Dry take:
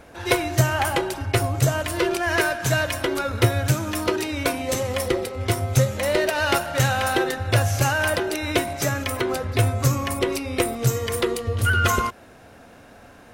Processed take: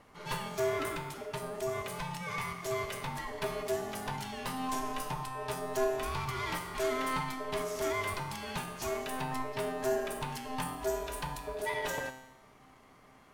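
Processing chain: 0.92–2.92 s: compression 4:1, threshold -21 dBFS, peak gain reduction 6.5 dB; ring modulator 520 Hz; saturation -18.5 dBFS, distortion -12 dB; feedback comb 130 Hz, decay 0.94 s, harmonics all, mix 80%; trim +2.5 dB

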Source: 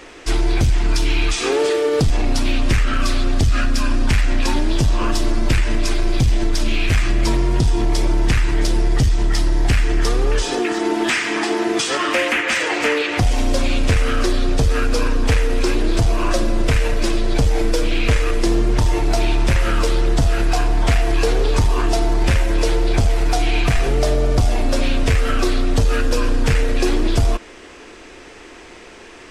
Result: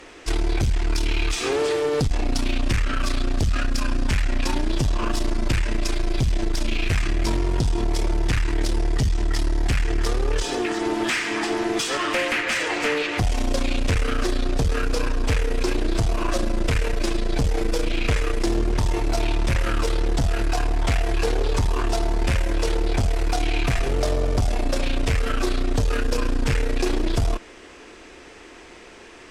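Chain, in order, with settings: valve stage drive 12 dB, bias 0.5; trim -2 dB

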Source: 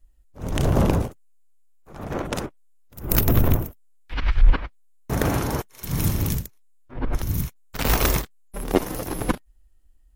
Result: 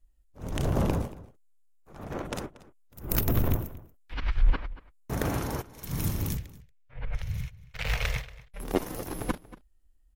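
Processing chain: 6.37–8.60 s: FFT filter 140 Hz 0 dB, 330 Hz -28 dB, 470 Hz -4 dB, 1.1 kHz -8 dB, 2.2 kHz +6 dB, 15 kHz -18 dB; echo from a far wall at 40 m, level -18 dB; trim -7 dB

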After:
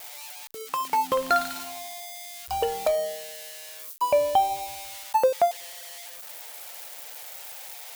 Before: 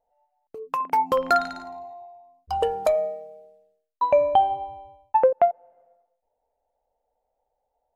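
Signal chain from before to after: zero-crossing glitches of -23 dBFS; dynamic bell 3 kHz, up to +4 dB, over -44 dBFS, Q 1; trim -3 dB

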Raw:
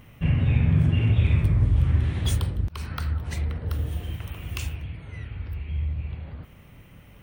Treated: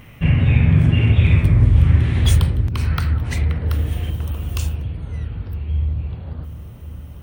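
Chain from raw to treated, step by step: peaking EQ 2.2 kHz +3.5 dB 0.77 oct, from 4.10 s -10.5 dB; bucket-brigade echo 561 ms, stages 2048, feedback 64%, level -10 dB; trim +6.5 dB

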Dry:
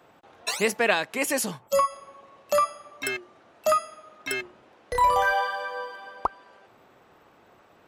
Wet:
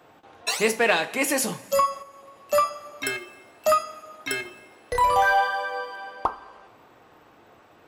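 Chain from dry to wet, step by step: reverberation, pre-delay 3 ms, DRR 7.5 dB; in parallel at -11.5 dB: overload inside the chain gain 22 dB; 2.02–2.53 s: on the sum: compression, threshold -43 dBFS, peak gain reduction 8.5 dB

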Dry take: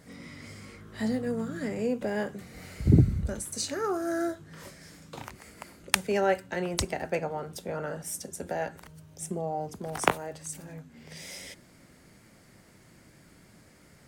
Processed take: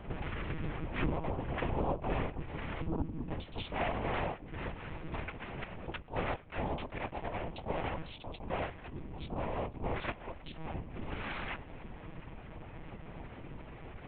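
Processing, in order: local Wiener filter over 9 samples; dynamic bell 1.8 kHz, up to +6 dB, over -54 dBFS, Q 3; compression 5:1, threshold -44 dBFS, peak gain reduction 26.5 dB; flange 0.29 Hz, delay 9.2 ms, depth 1 ms, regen +46%; noise-vocoded speech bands 4; distance through air 180 m; monotone LPC vocoder at 8 kHz 160 Hz; attacks held to a fixed rise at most 210 dB/s; trim +16 dB

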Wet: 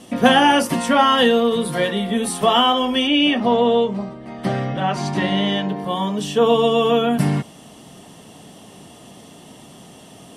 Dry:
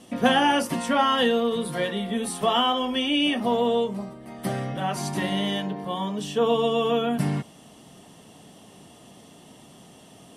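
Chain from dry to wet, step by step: 3.07–5.69 s: low-pass 4.9 kHz 12 dB/octave; trim +6.5 dB

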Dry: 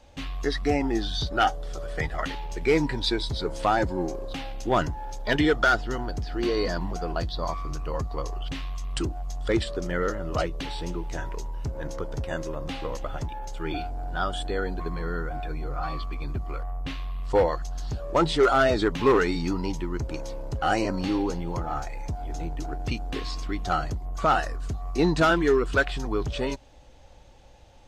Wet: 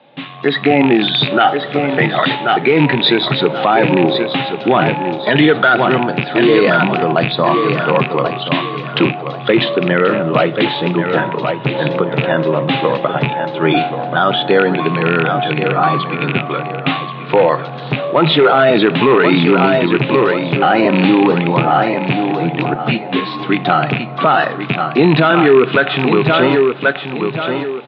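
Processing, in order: rattle on loud lows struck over -26 dBFS, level -23 dBFS; feedback delay 1082 ms, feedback 30%, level -10 dB; level rider gain up to 10 dB; Chebyshev band-pass 130–3800 Hz, order 5; reverberation, pre-delay 3 ms, DRR 15.5 dB; loudness maximiser +10.5 dB; 22.74–23.40 s: three-phase chorus; trim -1 dB

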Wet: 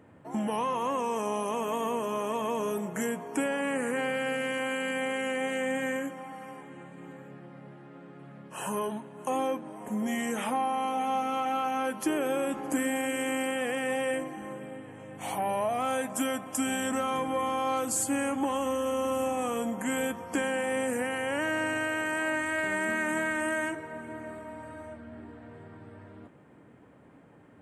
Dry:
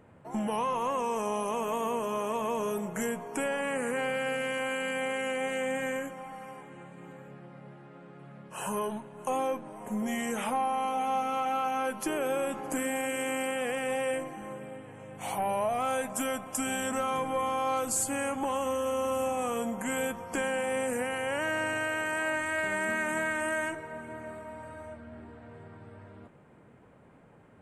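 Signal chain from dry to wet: high-pass 58 Hz; small resonant body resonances 290/1800/3200 Hz, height 7 dB

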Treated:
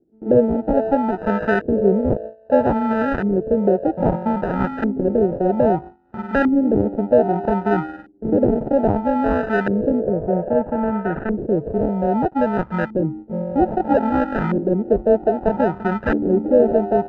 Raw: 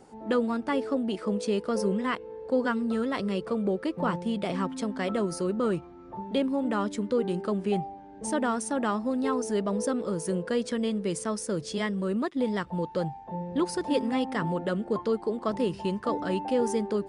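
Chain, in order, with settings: gate with hold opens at -33 dBFS; sample-and-hold 40×; LFO low-pass saw up 0.62 Hz 330–1600 Hz; 10.00–11.35 s: distance through air 490 m; trim +7.5 dB

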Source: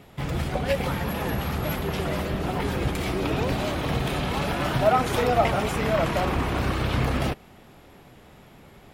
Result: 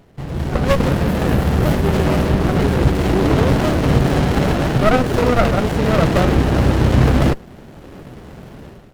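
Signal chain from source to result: level rider gain up to 14 dB; sliding maximum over 33 samples; trim +1 dB

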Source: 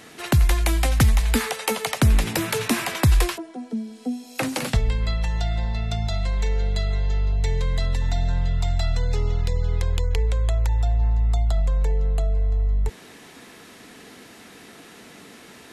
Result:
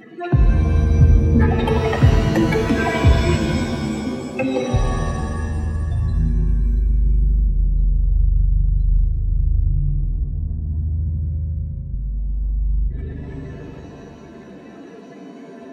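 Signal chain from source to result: spectral contrast enhancement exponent 3.4; in parallel at -7.5 dB: saturation -24.5 dBFS, distortion -10 dB; 10.23–11.94 s: on the sum: resonant low shelf 520 Hz -7.5 dB, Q 1.5; flange 0.14 Hz, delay 5.4 ms, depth 6 ms, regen -30%; pitch-shifted reverb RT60 2.2 s, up +7 st, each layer -2 dB, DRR 3.5 dB; trim +6 dB

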